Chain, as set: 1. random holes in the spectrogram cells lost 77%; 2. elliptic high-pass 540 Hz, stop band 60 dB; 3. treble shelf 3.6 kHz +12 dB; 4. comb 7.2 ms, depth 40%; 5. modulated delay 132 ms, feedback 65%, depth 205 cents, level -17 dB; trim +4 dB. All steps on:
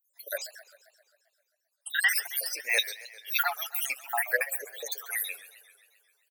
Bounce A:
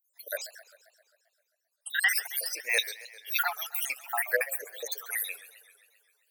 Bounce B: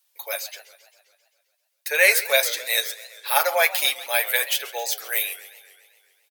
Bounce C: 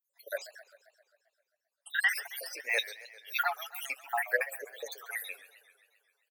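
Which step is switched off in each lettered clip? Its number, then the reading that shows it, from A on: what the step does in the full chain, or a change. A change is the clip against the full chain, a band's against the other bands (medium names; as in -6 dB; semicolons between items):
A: 4, 500 Hz band +2.5 dB; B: 1, 500 Hz band +5.5 dB; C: 3, 8 kHz band -8.5 dB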